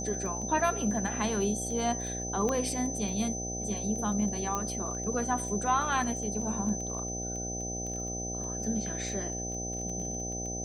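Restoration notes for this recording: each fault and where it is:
buzz 60 Hz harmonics 13 -38 dBFS
crackle 17 per s -37 dBFS
whine 6.1 kHz -36 dBFS
2.49 s: pop -18 dBFS
4.55 s: pop -18 dBFS

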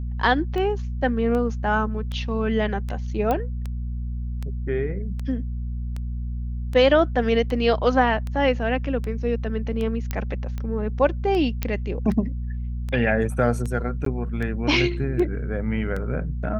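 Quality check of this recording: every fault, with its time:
hum 60 Hz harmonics 4 -28 dBFS
tick 78 rpm -19 dBFS
3.31 s: pop -12 dBFS
10.11 s: pop -12 dBFS
11.63 s: pop -10 dBFS
14.05–14.06 s: dropout 13 ms

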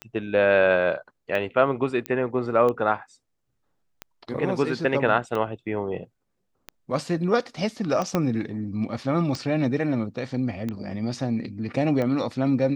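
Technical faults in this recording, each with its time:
tick 45 rpm -17 dBFS
2.06 s: pop -14 dBFS
8.15 s: pop -10 dBFS

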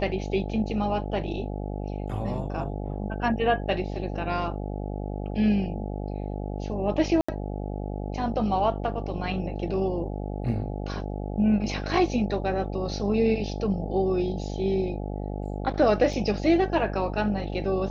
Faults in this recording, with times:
buzz 50 Hz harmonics 17 -32 dBFS
7.21–7.29 s: dropout 75 ms
16.13 s: dropout 3.4 ms

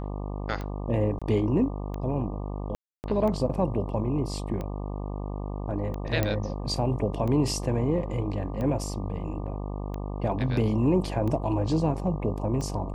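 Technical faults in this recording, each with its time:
buzz 50 Hz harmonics 24 -33 dBFS
tick 45 rpm -22 dBFS
1.19–1.22 s: dropout 26 ms
2.75–3.04 s: dropout 289 ms
6.23 s: pop -11 dBFS
10.32 s: dropout 2.2 ms

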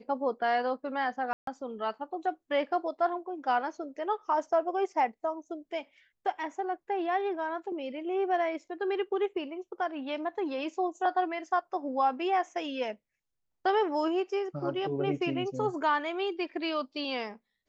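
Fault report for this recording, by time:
1.33–1.47 s: dropout 143 ms

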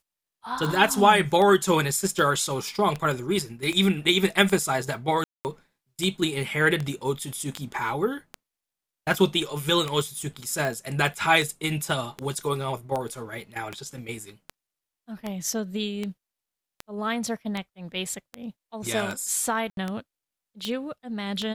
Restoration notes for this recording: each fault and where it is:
tick 78 rpm
5.24–5.45 s: dropout 209 ms
19.70–19.77 s: dropout 72 ms

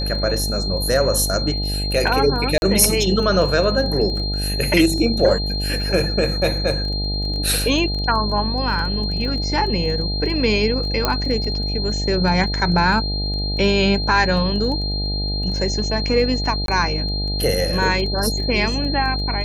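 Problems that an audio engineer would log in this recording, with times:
buzz 50 Hz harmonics 17 -24 dBFS
crackle 11 per s -27 dBFS
whine 4.2 kHz -25 dBFS
2.58–2.62 s: dropout 41 ms
11.05 s: pop -3 dBFS
16.66–16.68 s: dropout 22 ms

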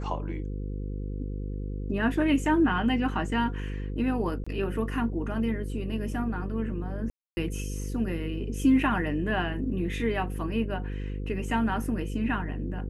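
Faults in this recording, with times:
buzz 50 Hz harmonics 10 -33 dBFS
4.44–4.46 s: dropout 25 ms
7.10–7.37 s: dropout 270 ms

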